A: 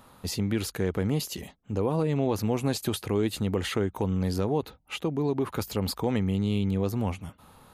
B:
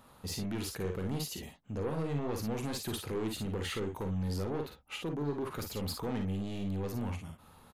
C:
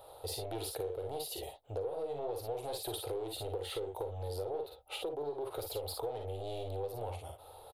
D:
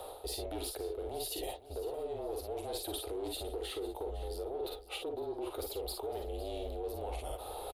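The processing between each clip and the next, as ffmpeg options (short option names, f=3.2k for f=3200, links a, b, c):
-filter_complex "[0:a]asoftclip=type=tanh:threshold=-25dB,asplit=2[a][b];[b]aecho=0:1:42|55:0.398|0.473[c];[a][c]amix=inputs=2:normalize=0,volume=-5.5dB"
-af "firequalizer=gain_entry='entry(120,0);entry(190,-29);entry(330,2);entry(470,13);entry(770,12);entry(1200,-15);entry(3700,8);entry(6400,-7);entry(9400,8);entry(15000,5)':delay=0.05:min_phase=1,acompressor=threshold=-35dB:ratio=5,equalizer=f=1.3k:t=o:w=0.51:g=14.5,volume=-1.5dB"
-af "areverse,acompressor=threshold=-48dB:ratio=6,areverse,afreqshift=-33,aecho=1:1:507|1014|1521:0.158|0.0444|0.0124,volume=11dB"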